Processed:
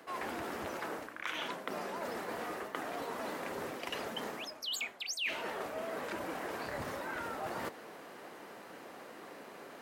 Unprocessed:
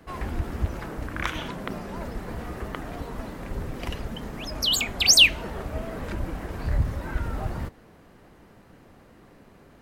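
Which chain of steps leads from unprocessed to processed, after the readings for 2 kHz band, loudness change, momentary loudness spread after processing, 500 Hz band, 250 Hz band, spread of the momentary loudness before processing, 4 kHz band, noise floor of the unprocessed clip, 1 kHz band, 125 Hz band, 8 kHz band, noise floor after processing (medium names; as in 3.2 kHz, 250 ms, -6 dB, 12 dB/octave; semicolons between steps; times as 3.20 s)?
-10.5 dB, -14.5 dB, 13 LU, -3.0 dB, -9.5 dB, 19 LU, -18.0 dB, -53 dBFS, -2.0 dB, -22.5 dB, -19.0 dB, -51 dBFS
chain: high-pass 410 Hz 12 dB/octave; dynamic bell 2.3 kHz, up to +4 dB, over -37 dBFS, Q 1.1; reverse; compression 12:1, threshold -43 dBFS, peak gain reduction 34.5 dB; reverse; trim +7 dB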